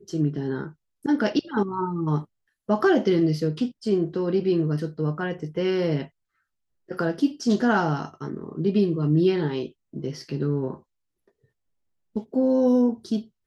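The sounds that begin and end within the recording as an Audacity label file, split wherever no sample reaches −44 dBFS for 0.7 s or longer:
6.890000	10.800000	sound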